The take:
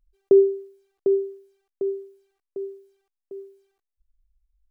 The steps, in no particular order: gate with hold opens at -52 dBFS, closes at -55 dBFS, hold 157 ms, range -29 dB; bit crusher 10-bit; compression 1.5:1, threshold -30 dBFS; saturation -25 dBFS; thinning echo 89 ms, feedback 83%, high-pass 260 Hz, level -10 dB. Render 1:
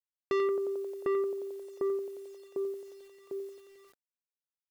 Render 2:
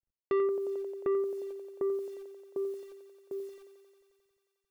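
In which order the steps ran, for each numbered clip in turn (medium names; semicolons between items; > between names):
gate with hold > thinning echo > saturation > bit crusher > compression; bit crusher > gate with hold > thinning echo > compression > saturation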